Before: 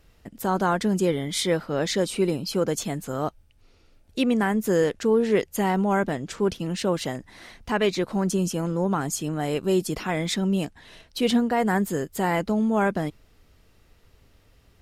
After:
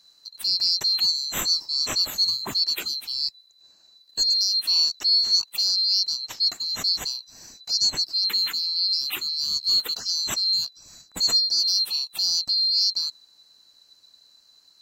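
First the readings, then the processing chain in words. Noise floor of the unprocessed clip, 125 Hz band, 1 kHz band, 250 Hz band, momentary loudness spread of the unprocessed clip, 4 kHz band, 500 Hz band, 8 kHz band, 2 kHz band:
-59 dBFS, under -20 dB, -16.0 dB, under -20 dB, 8 LU, +16.5 dB, under -20 dB, +4.5 dB, -8.5 dB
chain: band-swap scrambler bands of 4000 Hz

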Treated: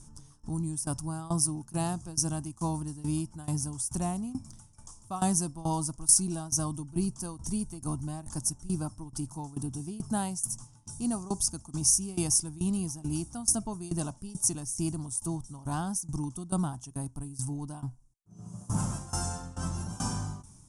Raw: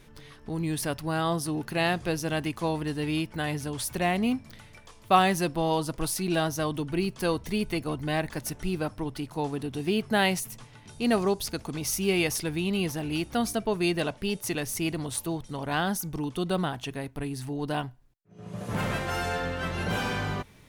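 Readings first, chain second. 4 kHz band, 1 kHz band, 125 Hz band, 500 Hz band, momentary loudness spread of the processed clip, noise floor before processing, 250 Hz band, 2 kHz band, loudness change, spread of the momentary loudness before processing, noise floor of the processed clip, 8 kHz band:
-7.5 dB, -9.0 dB, -0.5 dB, -12.5 dB, 12 LU, -53 dBFS, -4.0 dB, -19.0 dB, -2.0 dB, 9 LU, -55 dBFS, +8.0 dB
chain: bell 4300 Hz -7.5 dB 0.39 oct; tremolo saw down 2.3 Hz, depth 90%; EQ curve 140 Hz 0 dB, 320 Hz -6 dB, 460 Hz -19 dB, 890 Hz -5 dB, 1300 Hz -10 dB, 2000 Hz -27 dB, 3900 Hz -12 dB, 5500 Hz +6 dB, 9800 Hz +11 dB, 14000 Hz -26 dB; gain +4.5 dB

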